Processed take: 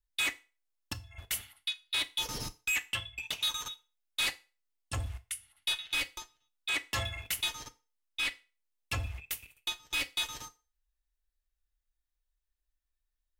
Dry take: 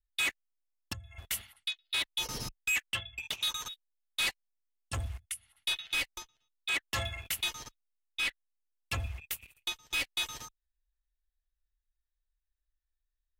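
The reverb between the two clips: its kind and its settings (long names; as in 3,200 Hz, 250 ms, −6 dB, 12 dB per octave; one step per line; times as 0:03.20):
feedback delay network reverb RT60 0.32 s, low-frequency decay 0.75×, high-frequency decay 0.95×, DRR 10 dB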